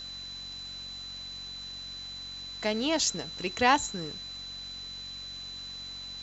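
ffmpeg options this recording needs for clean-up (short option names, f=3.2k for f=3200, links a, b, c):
-af "adeclick=t=4,bandreject=f=46.2:t=h:w=4,bandreject=f=92.4:t=h:w=4,bandreject=f=138.6:t=h:w=4,bandreject=f=184.8:t=h:w=4,bandreject=f=231:t=h:w=4,bandreject=f=277.2:t=h:w=4,bandreject=f=4k:w=30,afwtdn=0.0035"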